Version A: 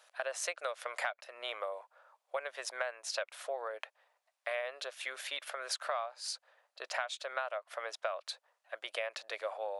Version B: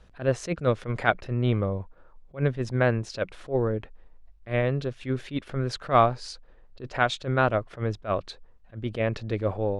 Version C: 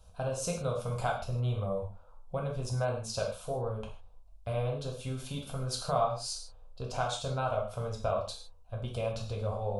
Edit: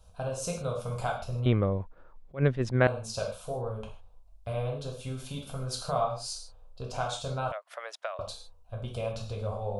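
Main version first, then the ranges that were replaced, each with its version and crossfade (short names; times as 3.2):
C
1.46–2.87 from B
7.52–8.19 from A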